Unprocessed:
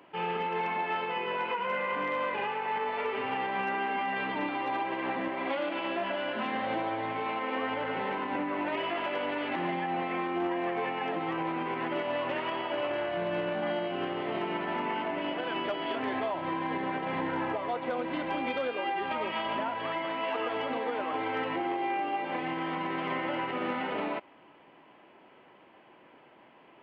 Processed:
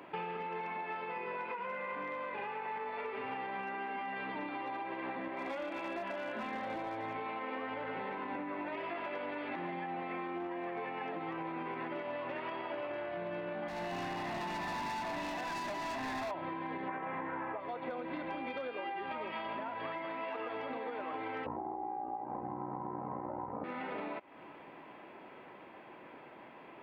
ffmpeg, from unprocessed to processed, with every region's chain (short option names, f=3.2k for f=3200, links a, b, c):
-filter_complex "[0:a]asettb=1/sr,asplit=3[a][b][c];[a]atrim=end=5.364[d];[b]atrim=start=5.36:end=7.16,asetpts=PTS-STARTPTS,afade=t=in:d=0.004:c=qsin,afade=t=out:st=1.796:d=0.004:c=qsin,highpass=f=70:w=0.5412,highpass=f=70:w=1.3066,asoftclip=type=hard:threshold=-26.5dB[e];[c]atrim=start=7.156[f];[d][e]acrossfade=d=0.004:c1=hsin:c2=qsin[g];[g][f]acrossfade=d=0.004:c1=qsin:c2=hsin,asettb=1/sr,asplit=3[h][i][j];[h]atrim=end=13.684[k];[i]atrim=start=13.68:end=16.31,asetpts=PTS-STARTPTS,afade=t=in:d=0.004:c=qsin,afade=t=out:st=2.626:d=0.004:c=qsin,aecho=1:1:1.1:0.9,atrim=end_sample=115983,volume=33dB,asoftclip=hard,volume=-33dB[l];[j]atrim=start=16.306[m];[k][l]acrossfade=d=0.004:c1=hsin:c2=qsin[n];[n][m]acrossfade=d=0.004:c1=qsin:c2=hsin,asettb=1/sr,asplit=3[o][p][q];[o]atrim=end=16.884[r];[p]atrim=start=16.88:end=17.6,asetpts=PTS-STARTPTS,afade=t=in:d=0.004:c=qsin,afade=t=out:st=0.716:d=0.004:c=qsin,lowpass=2.2k,equalizer=f=1.5k:t=o:w=2.7:g=7,aeval=exprs='val(0)+0.00891*sin(2*PI*1100*n/s)':c=same[s];[q]atrim=start=17.596[t];[r][s]acrossfade=d=0.004:c1=hsin:c2=qsin[u];[u][t]acrossfade=d=0.004:c1=qsin:c2=hsin,asettb=1/sr,asplit=3[v][w][x];[v]atrim=end=21.464[y];[w]atrim=start=21.46:end=23.64,asetpts=PTS-STARTPTS,afade=t=in:d=0.004:c=qsin,afade=t=out:st=2.176:d=0.004:c=qsin,aeval=exprs='val(0)*sin(2*PI*30*n/s)':c=same,lowpass=f=910:t=q:w=3.4,aemphasis=mode=reproduction:type=riaa[z];[x]atrim=start=23.636[aa];[y][z]acrossfade=d=0.004:c1=hsin:c2=qsin[ab];[ab][aa]acrossfade=d=0.004:c1=qsin:c2=hsin,dynaudnorm=f=630:g=17:m=4.5dB,bandreject=f=3k:w=8.7,acompressor=threshold=-42dB:ratio=12,volume=5dB"